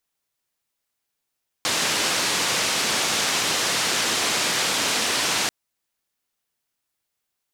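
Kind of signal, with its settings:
band-limited noise 150–6,300 Hz, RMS −23 dBFS 3.84 s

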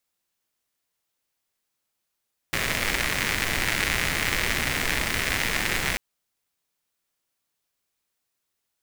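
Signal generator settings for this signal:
rain-like ticks over hiss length 3.44 s, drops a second 140, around 2,000 Hz, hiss −1.5 dB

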